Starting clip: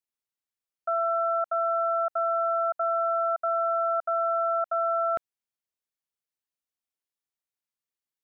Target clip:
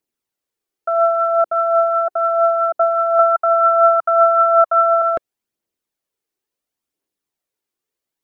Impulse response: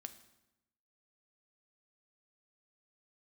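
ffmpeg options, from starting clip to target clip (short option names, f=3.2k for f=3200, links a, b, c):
-filter_complex "[0:a]equalizer=f=350:w=0.9:g=10.5,aphaser=in_gain=1:out_gain=1:delay=2.8:decay=0.37:speed=0.71:type=triangular,asettb=1/sr,asplit=3[a][b][c];[a]atrim=end=3.194[d];[b]atrim=start=3.19:end=5.02,asetpts=PTS-STARTPTS,afade=t=in:d=0.004:c=qsin,afade=t=out:st=1.826:d=0.004:c=qsin,equalizer=f=125:t=o:w=1:g=4,equalizer=f=250:t=o:w=1:g=-6,equalizer=f=500:t=o:w=1:g=-4,equalizer=f=1k:t=o:w=1:g=10[e];[c]atrim=start=5.016[f];[d][e]acrossfade=d=0.004:c1=hsin:c2=qsin[g];[g][f]acrossfade=d=0.004:c1=qsin:c2=hsin,volume=6.5dB"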